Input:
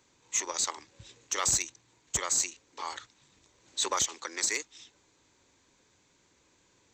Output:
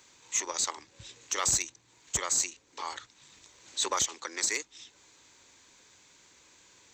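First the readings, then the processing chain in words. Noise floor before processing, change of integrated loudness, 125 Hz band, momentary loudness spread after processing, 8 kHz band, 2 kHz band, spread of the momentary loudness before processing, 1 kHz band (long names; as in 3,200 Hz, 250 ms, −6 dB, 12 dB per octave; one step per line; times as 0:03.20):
−68 dBFS, 0.0 dB, 0.0 dB, 19 LU, 0.0 dB, 0.0 dB, 13 LU, 0.0 dB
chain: one half of a high-frequency compander encoder only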